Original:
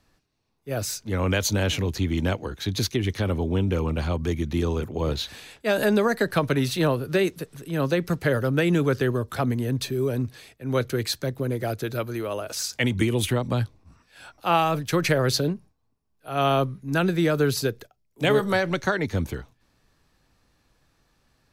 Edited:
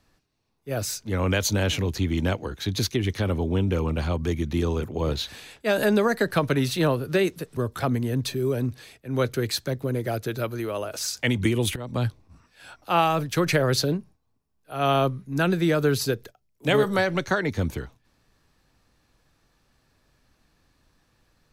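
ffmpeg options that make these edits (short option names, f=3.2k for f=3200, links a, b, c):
-filter_complex "[0:a]asplit=3[a][b][c];[a]atrim=end=7.572[d];[b]atrim=start=9.128:end=13.32,asetpts=PTS-STARTPTS,afade=t=out:st=4.188:d=0.004:c=hsin:silence=0.11885[e];[c]atrim=start=13.32,asetpts=PTS-STARTPTS,afade=t=in:d=0.27:silence=0.11885[f];[e][f]concat=n=2:v=0:a=1[g];[d][g]acrossfade=d=0.004:c1=hsin:c2=hsin"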